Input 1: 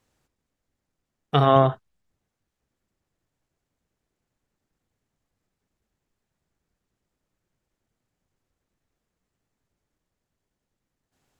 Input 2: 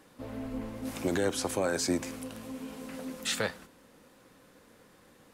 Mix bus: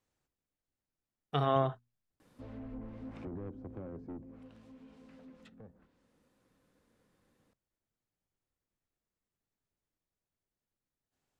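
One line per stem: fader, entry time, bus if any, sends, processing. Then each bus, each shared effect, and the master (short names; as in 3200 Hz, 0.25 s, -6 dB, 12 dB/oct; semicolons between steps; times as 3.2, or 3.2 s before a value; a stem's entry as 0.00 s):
-12.0 dB, 0.00 s, no send, notches 60/120/180/240 Hz
4.03 s -9.5 dB -> 4.59 s -17 dB, 2.20 s, no send, treble ducked by the level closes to 380 Hz, closed at -28.5 dBFS; soft clip -31.5 dBFS, distortion -10 dB; low shelf 240 Hz +8 dB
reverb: off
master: dry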